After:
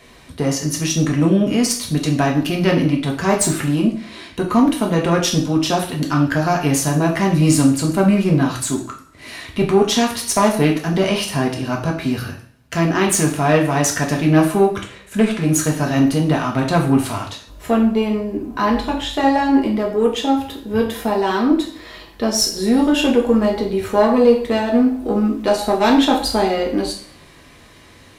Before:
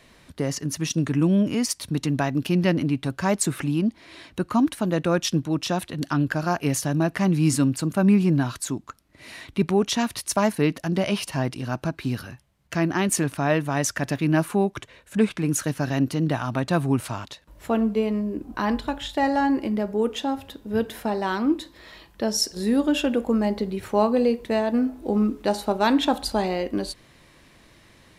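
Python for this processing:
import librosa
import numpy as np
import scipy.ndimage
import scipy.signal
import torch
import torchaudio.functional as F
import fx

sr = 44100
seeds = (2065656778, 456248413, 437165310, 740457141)

y = fx.diode_clip(x, sr, knee_db=-14.0)
y = fx.rev_double_slope(y, sr, seeds[0], early_s=0.48, late_s=1.6, knee_db=-27, drr_db=-0.5)
y = y * 10.0 ** (5.0 / 20.0)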